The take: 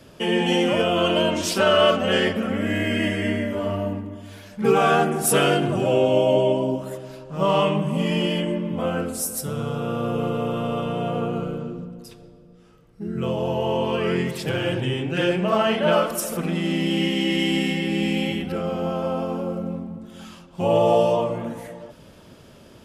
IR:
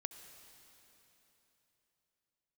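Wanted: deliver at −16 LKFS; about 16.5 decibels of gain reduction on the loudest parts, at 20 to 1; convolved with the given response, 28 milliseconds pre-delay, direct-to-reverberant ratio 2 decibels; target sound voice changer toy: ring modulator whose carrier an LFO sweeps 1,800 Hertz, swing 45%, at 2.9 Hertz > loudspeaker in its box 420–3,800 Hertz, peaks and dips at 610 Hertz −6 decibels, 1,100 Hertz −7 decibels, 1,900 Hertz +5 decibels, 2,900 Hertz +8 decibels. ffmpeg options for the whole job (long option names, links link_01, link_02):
-filter_complex "[0:a]acompressor=threshold=-30dB:ratio=20,asplit=2[link_01][link_02];[1:a]atrim=start_sample=2205,adelay=28[link_03];[link_02][link_03]afir=irnorm=-1:irlink=0,volume=0.5dB[link_04];[link_01][link_04]amix=inputs=2:normalize=0,aeval=exprs='val(0)*sin(2*PI*1800*n/s+1800*0.45/2.9*sin(2*PI*2.9*n/s))':channel_layout=same,highpass=420,equalizer=frequency=610:width_type=q:width=4:gain=-6,equalizer=frequency=1100:width_type=q:width=4:gain=-7,equalizer=frequency=1900:width_type=q:width=4:gain=5,equalizer=frequency=2900:width_type=q:width=4:gain=8,lowpass=frequency=3800:width=0.5412,lowpass=frequency=3800:width=1.3066,volume=14.5dB"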